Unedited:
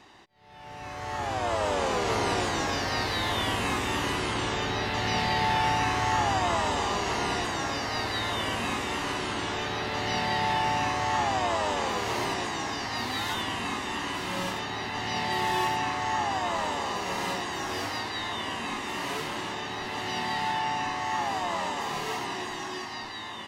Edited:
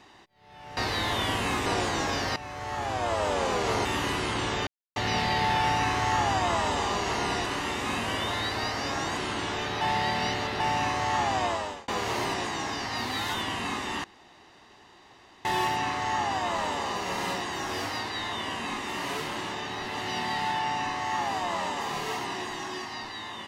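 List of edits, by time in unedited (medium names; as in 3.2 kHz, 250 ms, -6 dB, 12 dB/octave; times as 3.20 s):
0.77–2.26 s: swap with 2.96–3.85 s
4.67–4.96 s: mute
7.46–9.17 s: reverse
9.81–10.60 s: reverse
11.45–11.88 s: fade out
14.04–15.45 s: room tone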